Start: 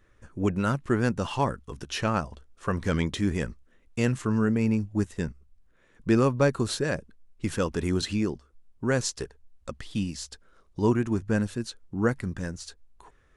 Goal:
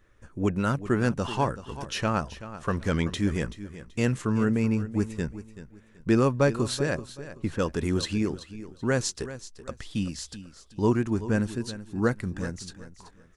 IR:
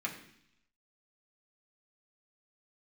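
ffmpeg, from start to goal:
-filter_complex "[0:a]asettb=1/sr,asplit=3[link_01][link_02][link_03];[link_01]atrim=end=6.974[link_04];[link_02]atrim=start=6.97:end=7.59,asetpts=PTS-STARTPTS,afade=type=in:duration=0.004:curve=qsin,afade=type=out:start_time=0.616:duration=0.004:curve=qsin,lowpass=frequency=1500:poles=1[link_05];[link_03]atrim=start=7.586[link_06];[link_04][link_05]acrossfade=duration=0.004:curve1=hsin:curve2=qsin[link_07];[link_07][link_06]acrossfade=duration=0.004:curve1=qsin:curve2=hsin,asplit=2[link_08][link_09];[link_09]aecho=0:1:381|762|1143:0.2|0.0539|0.0145[link_10];[link_08][link_10]amix=inputs=2:normalize=0"

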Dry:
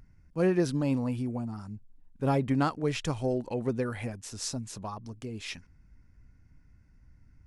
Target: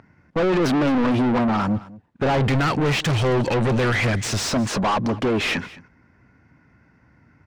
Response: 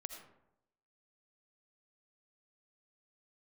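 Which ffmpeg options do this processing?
-filter_complex "[0:a]highpass=79,aemphasis=mode=reproduction:type=50kf,agate=range=-16dB:threshold=-54dB:ratio=16:detection=peak,asplit=3[link_01][link_02][link_03];[link_01]afade=type=out:start_time=2.36:duration=0.02[link_04];[link_02]equalizer=frequency=125:width_type=o:width=1:gain=8,equalizer=frequency=250:width_type=o:width=1:gain=-5,equalizer=frequency=500:width_type=o:width=1:gain=-3,equalizer=frequency=1000:width_type=o:width=1:gain=-11,equalizer=frequency=2000:width_type=o:width=1:gain=5,equalizer=frequency=4000:width_type=o:width=1:gain=5,equalizer=frequency=8000:width_type=o:width=1:gain=9,afade=type=in:start_time=2.36:duration=0.02,afade=type=out:start_time=4.49:duration=0.02[link_05];[link_03]afade=type=in:start_time=4.49:duration=0.02[link_06];[link_04][link_05][link_06]amix=inputs=3:normalize=0,asplit=2[link_07][link_08];[link_08]highpass=frequency=720:poles=1,volume=36dB,asoftclip=type=tanh:threshold=-15.5dB[link_09];[link_07][link_09]amix=inputs=2:normalize=0,lowpass=frequency=1400:poles=1,volume=-6dB,asoftclip=type=tanh:threshold=-25dB,aecho=1:1:214:0.106,volume=8dB"

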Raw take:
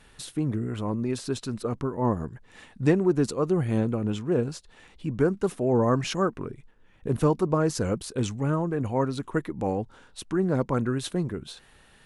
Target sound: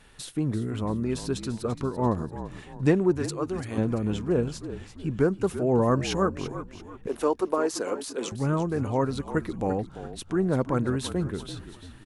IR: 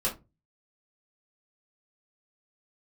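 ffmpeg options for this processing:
-filter_complex "[0:a]asettb=1/sr,asplit=3[link_01][link_02][link_03];[link_01]atrim=end=3.174[link_04];[link_02]atrim=start=3.17:end=3.78,asetpts=PTS-STARTPTS,afade=type=in:duration=0.004:curve=qsin,afade=type=out:start_time=0.606:duration=0.004:curve=qsin,lowshelf=frequency=500:gain=-11.5[link_05];[link_03]atrim=start=3.776[link_06];[link_04][link_05]acrossfade=duration=0.004:curve1=hsin:curve2=qsin[link_07];[link_07][link_06]acrossfade=duration=0.004:curve1=qsin:curve2=hsin,asettb=1/sr,asplit=3[link_08][link_09][link_10];[link_08]atrim=end=7.074[link_11];[link_09]atrim=start=7.07:end=8.32,asetpts=PTS-STARTPTS,afade=type=in:duration=0.004:curve=qsin,afade=type=out:start_time=1.246:duration=0.004:curve=qsin,highpass=frequency=320:width=0.5412,highpass=frequency=320:width=1.3066[link_12];[link_10]atrim=start=8.316[link_13];[link_11][link_12]acrossfade=duration=0.004:curve1=hsin:curve2=qsin[link_14];[link_14][link_13]acrossfade=duration=0.004:curve1=qsin:curve2=hsin,asplit=5[link_15][link_16][link_17][link_18][link_19];[link_16]adelay=340,afreqshift=-46,volume=-12dB[link_20];[link_17]adelay=680,afreqshift=-92,volume=-19.7dB[link_21];[link_18]adelay=1020,afreqshift=-138,volume=-27.5dB[link_22];[link_19]adelay=1360,afreqshift=-184,volume=-35.2dB[link_23];[link_15][link_20][link_21][link_22][link_23]amix=inputs=5:normalize=0"

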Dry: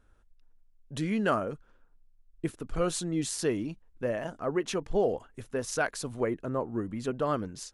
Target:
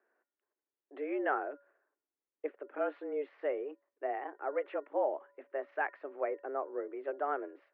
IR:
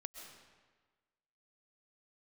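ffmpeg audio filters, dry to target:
-af "bandreject=frequency=426.3:width_type=h:width=4,bandreject=frequency=852.6:width_type=h:width=4,bandreject=frequency=1278.9:width_type=h:width=4,bandreject=frequency=1705.2:width_type=h:width=4,highpass=frequency=180:width_type=q:width=0.5412,highpass=frequency=180:width_type=q:width=1.307,lowpass=frequency=2200:width_type=q:width=0.5176,lowpass=frequency=2200:width_type=q:width=0.7071,lowpass=frequency=2200:width_type=q:width=1.932,afreqshift=140,volume=-5dB"

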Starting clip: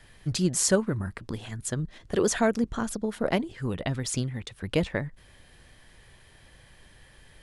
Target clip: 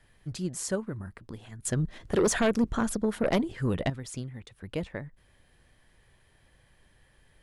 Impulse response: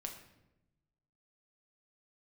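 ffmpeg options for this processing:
-filter_complex "[0:a]equalizer=frequency=4900:width=0.56:gain=-4,asettb=1/sr,asplit=3[link_01][link_02][link_03];[link_01]atrim=end=1.654[link_04];[link_02]atrim=start=1.65:end=3.9,asetpts=PTS-STARTPTS,afade=type=in:duration=0.004:curve=qsin,afade=type=out:start_time=2.246:duration=0.004:curve=qsin,aeval=exprs='0.282*sin(PI/2*2.24*val(0)/0.282)':channel_layout=same[link_05];[link_03]atrim=start=3.896[link_06];[link_04][link_05]acrossfade=duration=0.004:curve1=hsin:curve2=qsin[link_07];[link_07][link_06]acrossfade=duration=0.004:curve1=qsin:curve2=hsin,volume=-7.5dB"

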